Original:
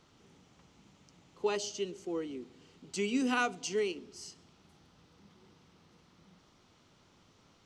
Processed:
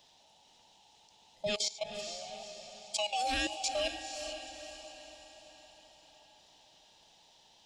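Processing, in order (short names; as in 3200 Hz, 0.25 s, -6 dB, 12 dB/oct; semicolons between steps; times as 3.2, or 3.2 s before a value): band inversion scrambler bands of 1000 Hz; resonant high shelf 2500 Hz +7 dB, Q 3; level quantiser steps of 16 dB; diffused feedback echo 0.478 s, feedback 51%, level -8 dB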